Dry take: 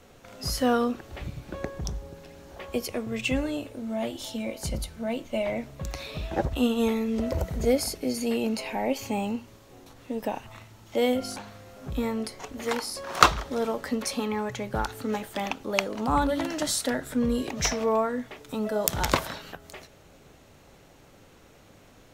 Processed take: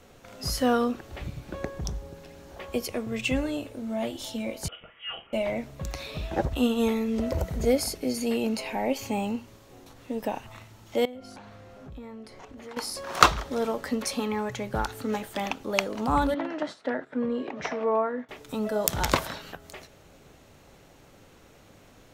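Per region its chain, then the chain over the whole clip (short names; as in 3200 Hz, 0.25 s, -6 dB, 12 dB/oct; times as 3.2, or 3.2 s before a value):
4.68–5.33 HPF 820 Hz + doubler 43 ms -9 dB + inverted band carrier 3500 Hz
11.05–12.77 LPF 2800 Hz 6 dB/oct + compressor 3:1, threshold -43 dBFS
16.34–18.29 BPF 260–2000 Hz + gate -43 dBFS, range -10 dB
whole clip: dry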